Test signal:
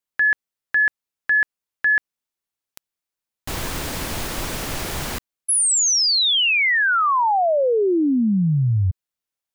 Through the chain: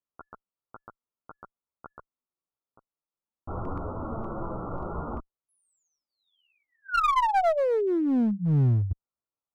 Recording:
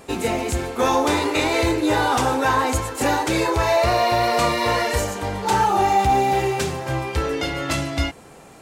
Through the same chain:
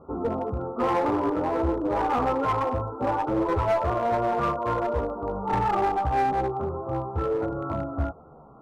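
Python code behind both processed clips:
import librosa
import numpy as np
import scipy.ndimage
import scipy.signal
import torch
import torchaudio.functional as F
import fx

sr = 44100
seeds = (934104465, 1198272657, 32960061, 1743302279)

y = fx.chorus_voices(x, sr, voices=2, hz=0.27, base_ms=13, depth_ms=4.2, mix_pct=50)
y = scipy.signal.sosfilt(scipy.signal.ellip(6, 1.0, 50, 1400.0, 'lowpass', fs=sr, output='sos'), y)
y = fx.clip_asym(y, sr, top_db=-22.5, bottom_db=-15.5)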